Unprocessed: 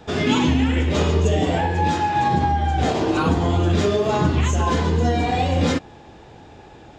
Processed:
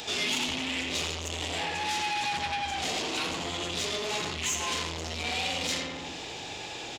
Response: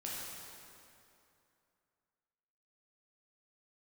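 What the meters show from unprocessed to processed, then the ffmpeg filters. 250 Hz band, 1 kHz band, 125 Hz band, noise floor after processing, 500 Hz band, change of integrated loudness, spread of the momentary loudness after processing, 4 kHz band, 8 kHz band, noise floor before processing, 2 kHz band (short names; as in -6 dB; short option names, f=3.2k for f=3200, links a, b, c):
-18.0 dB, -12.0 dB, -22.0 dB, -39 dBFS, -15.0 dB, -10.5 dB, 8 LU, +1.0 dB, +2.5 dB, -45 dBFS, -3.5 dB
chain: -filter_complex "[0:a]highshelf=f=6.8k:g=10.5,asplit=2[a][b];[b]adelay=85,lowpass=f=2.3k:p=1,volume=-3dB,asplit=2[c][d];[d]adelay=85,lowpass=f=2.3k:p=1,volume=0.48,asplit=2[e][f];[f]adelay=85,lowpass=f=2.3k:p=1,volume=0.48,asplit=2[g][h];[h]adelay=85,lowpass=f=2.3k:p=1,volume=0.48,asplit=2[i][j];[j]adelay=85,lowpass=f=2.3k:p=1,volume=0.48,asplit=2[k][l];[l]adelay=85,lowpass=f=2.3k:p=1,volume=0.48[m];[a][c][e][g][i][k][m]amix=inputs=7:normalize=0,asoftclip=type=tanh:threshold=-22dB,alimiter=level_in=7.5dB:limit=-24dB:level=0:latency=1:release=14,volume=-7.5dB,aexciter=amount=3.5:drive=8.5:freq=2.2k,acompressor=mode=upward:threshold=-40dB:ratio=2.5,asplit=2[n][o];[o]highpass=f=720:p=1,volume=11dB,asoftclip=type=tanh:threshold=-9dB[p];[n][p]amix=inputs=2:normalize=0,lowpass=f=2.2k:p=1,volume=-6dB,bandreject=f=50:t=h:w=6,bandreject=f=100:t=h:w=6,bandreject=f=150:t=h:w=6,bandreject=f=200:t=h:w=6,volume=-2dB"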